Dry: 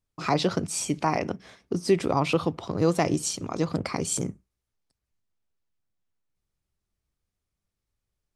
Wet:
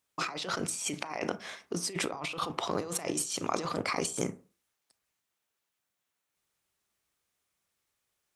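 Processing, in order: HPF 940 Hz 6 dB/oct; bell 4800 Hz -3.5 dB 0.51 oct; negative-ratio compressor -39 dBFS, ratio -1; on a send: reverb RT60 0.35 s, pre-delay 27 ms, DRR 15 dB; on the sum: gain +4 dB

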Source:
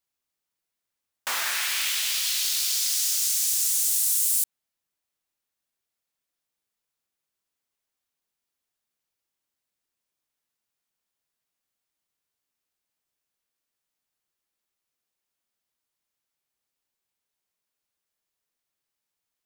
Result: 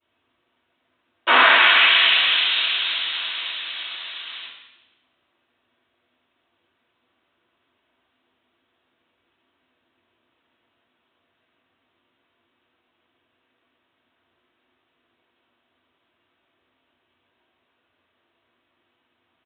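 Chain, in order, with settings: limiter -21 dBFS, peak gain reduction 9 dB; downsampling 8000 Hz; reverb RT60 0.95 s, pre-delay 3 ms, DRR -19 dB; gain +2 dB

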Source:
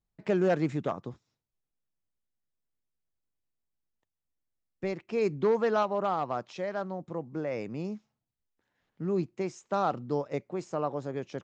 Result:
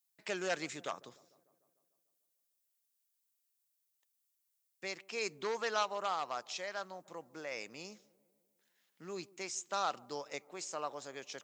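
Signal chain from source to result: differentiator; on a send: dark delay 0.149 s, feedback 62%, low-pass 860 Hz, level -22 dB; on the sum: gain +11.5 dB

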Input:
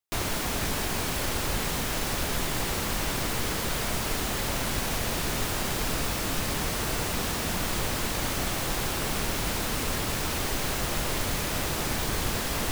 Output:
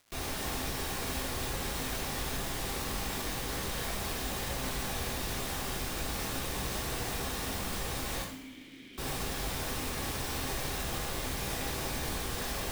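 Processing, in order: limiter -25.5 dBFS, peak gain reduction 10 dB; 8.22–8.98 vowel filter i; two-slope reverb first 0.59 s, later 1.9 s, from -18 dB, DRR -5.5 dB; crackle 430/s -44 dBFS; gain -7 dB

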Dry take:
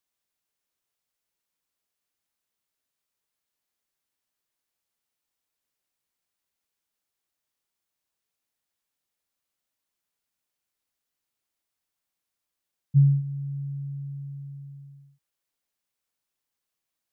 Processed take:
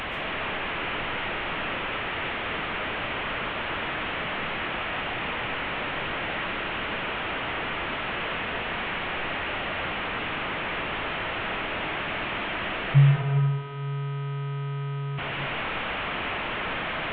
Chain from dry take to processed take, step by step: delta modulation 16 kbps, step -26.5 dBFS; reverb RT60 1.4 s, pre-delay 0.1 s, DRR 2.5 dB; gain +1.5 dB

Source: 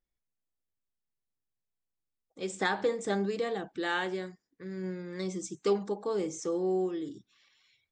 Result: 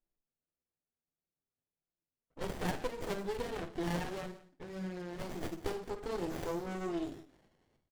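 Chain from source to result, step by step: tracing distortion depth 0.22 ms; high shelf 5800 Hz +10 dB; doubler 12 ms -4 dB; compressor 2.5:1, threshold -38 dBFS, peak gain reduction 12 dB; low-pass opened by the level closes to 1100 Hz, open at -37.5 dBFS; low shelf 440 Hz -9 dB; flutter echo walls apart 9 m, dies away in 0.29 s; flange 1.6 Hz, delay 5.3 ms, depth 2.8 ms, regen -29%; on a send: echo 0.173 s -18 dB; on the sum: running maximum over 33 samples; gain +10 dB

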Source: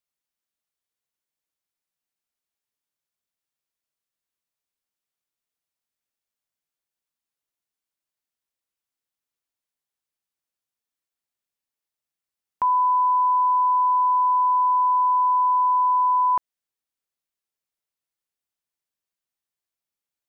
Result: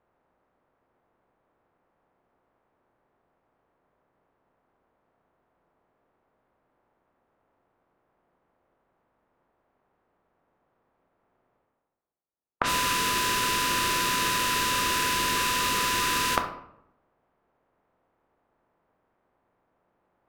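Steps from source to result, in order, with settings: spectral contrast lowered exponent 0.36; formant shift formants +3 st; reverse; upward compressor, threshold -40 dBFS; reverse; low-pass opened by the level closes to 930 Hz, open at -17.5 dBFS; overdrive pedal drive 6 dB, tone 1100 Hz, clips at -0.5 dBFS; on a send: reverb RT60 0.75 s, pre-delay 8 ms, DRR 5 dB; on the sum: gain +3 dB

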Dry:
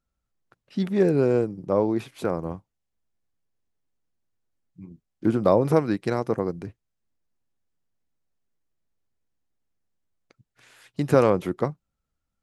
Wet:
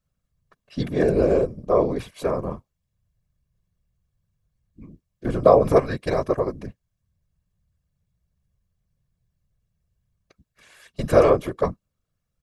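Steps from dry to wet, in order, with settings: comb 1.8 ms, depth 85%; whisperiser

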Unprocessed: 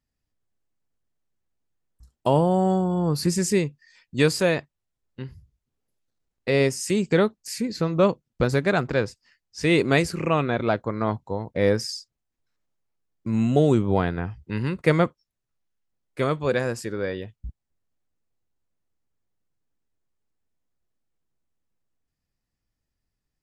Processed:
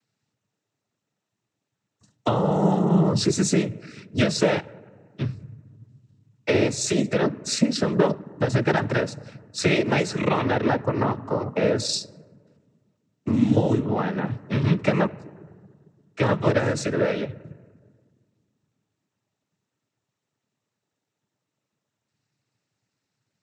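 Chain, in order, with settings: compressor, threshold -26 dBFS, peak gain reduction 12 dB; on a send at -17.5 dB: reverb RT60 1.8 s, pre-delay 3 ms; on the sum: noise vocoder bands 12; gain +8.5 dB

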